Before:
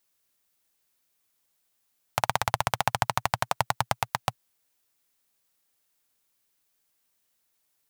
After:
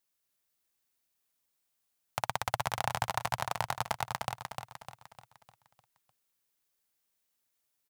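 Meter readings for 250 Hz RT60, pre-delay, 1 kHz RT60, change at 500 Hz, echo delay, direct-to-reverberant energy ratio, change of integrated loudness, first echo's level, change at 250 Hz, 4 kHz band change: no reverb, no reverb, no reverb, -6.0 dB, 302 ms, no reverb, -6.5 dB, -5.0 dB, -6.5 dB, -6.0 dB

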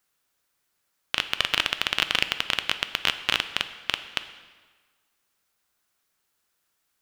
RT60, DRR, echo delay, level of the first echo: 1.5 s, 10.0 dB, no echo, no echo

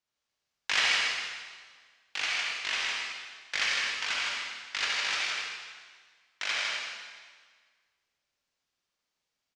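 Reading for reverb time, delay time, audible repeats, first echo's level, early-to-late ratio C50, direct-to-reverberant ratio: 1.6 s, 157 ms, 1, -4.0 dB, -4.5 dB, -5.5 dB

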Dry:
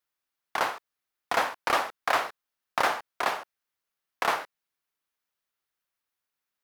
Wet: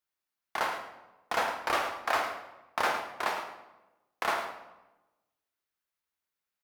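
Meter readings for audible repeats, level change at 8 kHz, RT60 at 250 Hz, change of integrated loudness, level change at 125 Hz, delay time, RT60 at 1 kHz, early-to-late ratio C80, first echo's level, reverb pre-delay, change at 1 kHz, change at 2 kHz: 1, -3.5 dB, 1.2 s, -3.0 dB, -2.5 dB, 107 ms, 1.0 s, 8.0 dB, -11.0 dB, 3 ms, -3.0 dB, -3.0 dB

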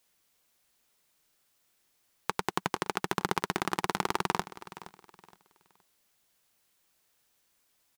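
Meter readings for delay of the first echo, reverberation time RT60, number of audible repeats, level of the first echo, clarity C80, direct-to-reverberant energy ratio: 469 ms, no reverb, 2, -16.5 dB, no reverb, no reverb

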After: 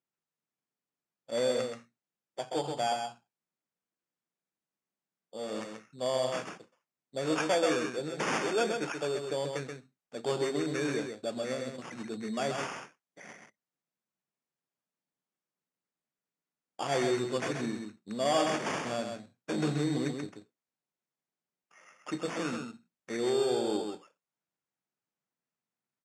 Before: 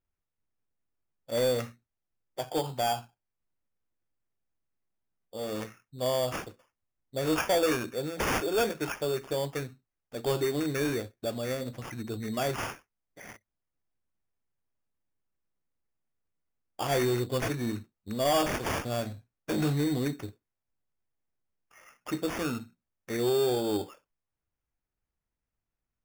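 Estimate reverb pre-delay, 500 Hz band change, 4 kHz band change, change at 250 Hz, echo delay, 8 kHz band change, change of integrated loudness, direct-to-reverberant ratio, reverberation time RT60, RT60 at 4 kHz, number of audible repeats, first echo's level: no reverb, -1.5 dB, -2.0 dB, -2.0 dB, 131 ms, -2.5 dB, -2.0 dB, no reverb, no reverb, no reverb, 1, -5.5 dB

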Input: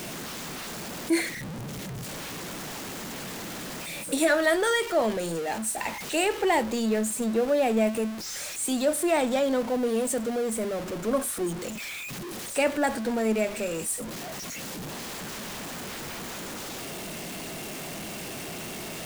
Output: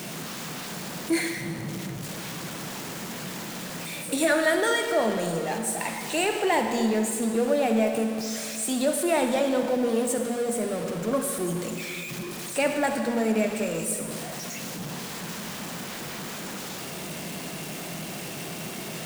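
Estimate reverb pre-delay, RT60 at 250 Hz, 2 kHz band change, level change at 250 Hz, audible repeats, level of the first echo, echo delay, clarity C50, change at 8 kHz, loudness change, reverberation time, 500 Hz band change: 39 ms, 2.7 s, +1.0 dB, +1.5 dB, no echo, no echo, no echo, 5.5 dB, +1.0 dB, +1.0 dB, 2.3 s, +0.5 dB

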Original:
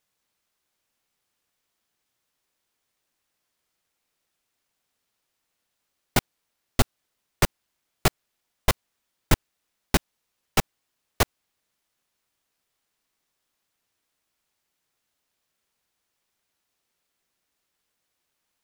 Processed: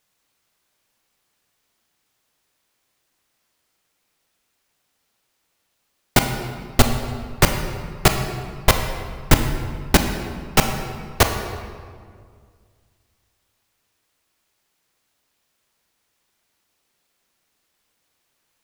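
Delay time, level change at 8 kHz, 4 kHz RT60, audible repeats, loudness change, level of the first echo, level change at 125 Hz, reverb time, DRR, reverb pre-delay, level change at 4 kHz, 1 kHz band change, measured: no echo, +7.0 dB, 1.2 s, no echo, +6.0 dB, no echo, +8.0 dB, 2.0 s, 5.0 dB, 23 ms, +7.5 dB, +8.0 dB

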